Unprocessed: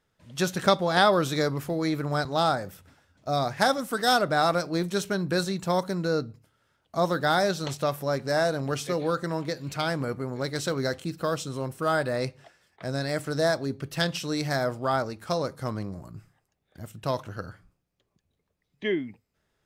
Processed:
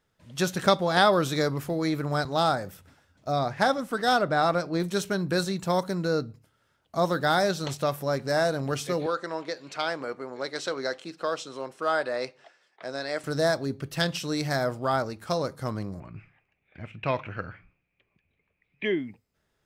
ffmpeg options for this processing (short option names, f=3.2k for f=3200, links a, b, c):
-filter_complex "[0:a]asettb=1/sr,asplit=3[a][b][c];[a]atrim=end=3.324[d];[b]atrim=start=3.32:end=4.8,asetpts=PTS-STARTPTS,afade=t=in:d=0.004:c=qsin,afade=t=out:st=1.476:d=0.004:c=qsin,lowpass=f=3.4k:p=1[e];[c]atrim=start=4.796[f];[d][e]acrossfade=d=0.004:c1=hsin:c2=qsin[g];[g][f]acrossfade=d=0.004:c1=qsin:c2=hsin,asettb=1/sr,asplit=3[h][i][j];[h]atrim=end=9.064[k];[i]atrim=start=9.06:end=13.24,asetpts=PTS-STARTPTS,afade=t=in:d=0.004:c=qsin,afade=t=out:st=4.176:d=0.004:c=qsin,highpass=390,lowpass=6k[l];[j]atrim=start=13.236[m];[k][l]acrossfade=d=0.004:c1=hsin:c2=qsin[n];[n][m]acrossfade=d=0.004:c1=qsin:c2=hsin,asettb=1/sr,asplit=3[o][p][q];[o]atrim=end=16.004[r];[p]atrim=start=16:end=18.85,asetpts=PTS-STARTPTS,afade=t=in:d=0.004:c=qsin,afade=t=out:st=2.846:d=0.004:c=qsin,lowpass=f=2.4k:t=q:w=9.4[s];[q]atrim=start=18.846[t];[r][s]acrossfade=d=0.004:c1=hsin:c2=qsin[u];[u][t]acrossfade=d=0.004:c1=qsin:c2=hsin"